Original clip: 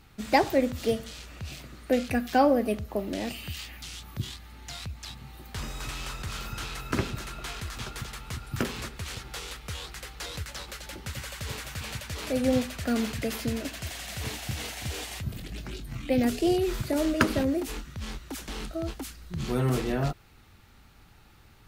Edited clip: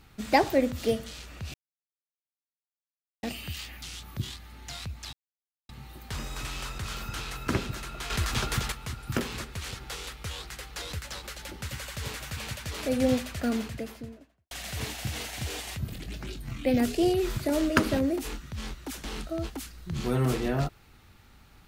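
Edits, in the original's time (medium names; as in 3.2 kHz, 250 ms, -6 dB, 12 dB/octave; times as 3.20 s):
1.54–3.23 s: mute
5.13 s: insert silence 0.56 s
7.54–8.16 s: gain +8 dB
12.66–13.95 s: studio fade out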